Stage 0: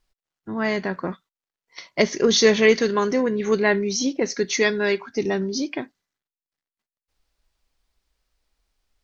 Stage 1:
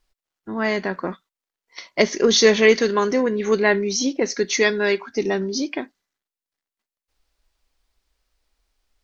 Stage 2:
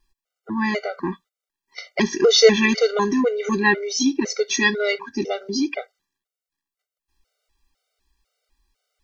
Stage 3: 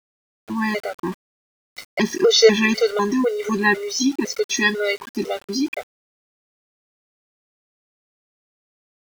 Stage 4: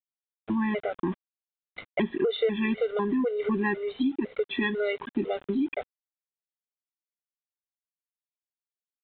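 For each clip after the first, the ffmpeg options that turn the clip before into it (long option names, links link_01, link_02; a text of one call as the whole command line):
ffmpeg -i in.wav -af "equalizer=frequency=130:width_type=o:width=0.55:gain=-13.5,volume=2dB" out.wav
ffmpeg -i in.wav -af "afftfilt=real='re*gt(sin(2*PI*2*pts/sr)*(1-2*mod(floor(b*sr/1024/390),2)),0)':imag='im*gt(sin(2*PI*2*pts/sr)*(1-2*mod(floor(b*sr/1024/390),2)),0)':win_size=1024:overlap=0.75,volume=3.5dB" out.wav
ffmpeg -i in.wav -af "aeval=exprs='val(0)*gte(abs(val(0)),0.0178)':channel_layout=same" out.wav
ffmpeg -i in.wav -af "aresample=8000,aresample=44100,tiltshelf=frequency=640:gain=4,acompressor=threshold=-25dB:ratio=4" out.wav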